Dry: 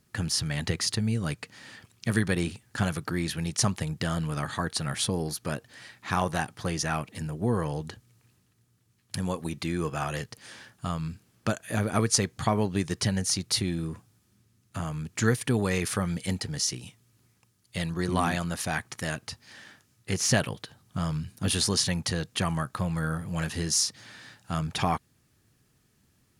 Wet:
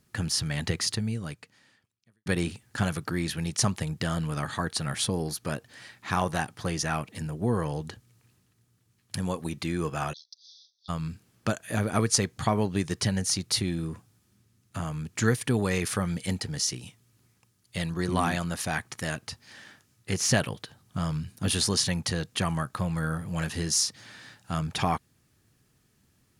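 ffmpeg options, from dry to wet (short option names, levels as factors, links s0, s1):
-filter_complex "[0:a]asplit=3[s0][s1][s2];[s0]afade=t=out:st=10.12:d=0.02[s3];[s1]asuperpass=centerf=4600:order=20:qfactor=1.7,afade=t=in:st=10.12:d=0.02,afade=t=out:st=10.88:d=0.02[s4];[s2]afade=t=in:st=10.88:d=0.02[s5];[s3][s4][s5]amix=inputs=3:normalize=0,asplit=2[s6][s7];[s6]atrim=end=2.26,asetpts=PTS-STARTPTS,afade=t=out:st=0.86:d=1.4:c=qua[s8];[s7]atrim=start=2.26,asetpts=PTS-STARTPTS,afade=t=in:d=0.004:c=hsin[s9];[s8][s9]concat=n=2:v=0:a=1"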